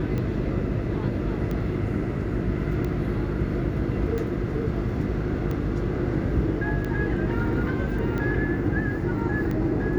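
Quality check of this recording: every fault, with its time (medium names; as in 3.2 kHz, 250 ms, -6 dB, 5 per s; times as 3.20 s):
hum 50 Hz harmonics 7 -30 dBFS
tick 45 rpm -19 dBFS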